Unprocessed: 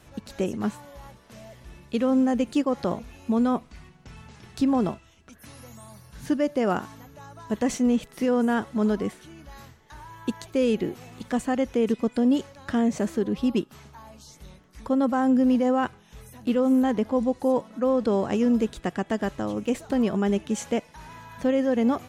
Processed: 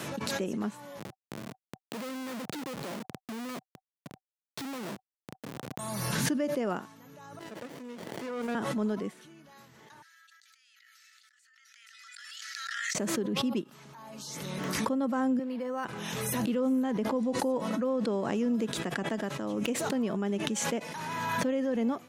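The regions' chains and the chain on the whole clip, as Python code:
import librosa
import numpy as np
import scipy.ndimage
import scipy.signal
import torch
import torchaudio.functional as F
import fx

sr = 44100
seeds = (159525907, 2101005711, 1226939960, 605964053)

y = fx.chain(x, sr, fx.low_shelf(hz=180.0, db=-10.0),
    fx.schmitt(flips_db=-40.0), at=(0.99, 5.79))
y = fx.chain(y, sr, fx.highpass(hz=820.0, slope=12),
    fx.running_max(window=33), at=(7.39, 8.55))
y = fx.chain(y, sr, fx.cheby_ripple_highpass(hz=1300.0, ripple_db=9),
    fx.over_compress(threshold_db=-58.0, ratio=-1.0), at=(10.02, 12.95))
y = fx.chain(y, sr, fx.weighting(curve='A'),
    fx.resample_linear(factor=6), at=(15.39, 15.85))
y = scipy.signal.sosfilt(scipy.signal.butter(4, 140.0, 'highpass', fs=sr, output='sos'), y)
y = fx.notch(y, sr, hz=760.0, q=15.0)
y = fx.pre_swell(y, sr, db_per_s=22.0)
y = y * librosa.db_to_amplitude(-7.5)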